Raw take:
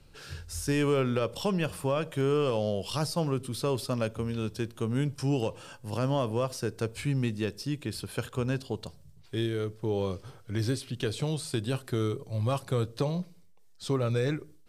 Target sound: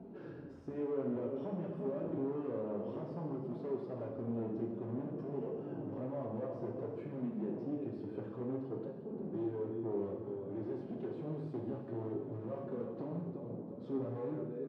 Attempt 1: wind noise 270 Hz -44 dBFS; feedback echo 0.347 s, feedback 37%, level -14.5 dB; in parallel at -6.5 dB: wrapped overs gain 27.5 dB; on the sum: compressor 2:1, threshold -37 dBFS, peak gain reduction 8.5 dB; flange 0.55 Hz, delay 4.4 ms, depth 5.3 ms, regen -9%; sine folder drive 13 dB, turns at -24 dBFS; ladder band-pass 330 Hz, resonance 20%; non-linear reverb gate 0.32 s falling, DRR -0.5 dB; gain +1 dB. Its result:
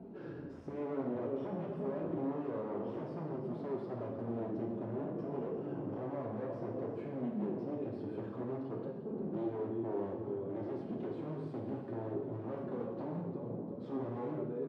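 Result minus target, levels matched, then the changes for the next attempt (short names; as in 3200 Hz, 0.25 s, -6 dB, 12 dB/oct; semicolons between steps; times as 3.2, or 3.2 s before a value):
compressor: peak gain reduction -4.5 dB
change: compressor 2:1, threshold -46 dBFS, peak gain reduction 13 dB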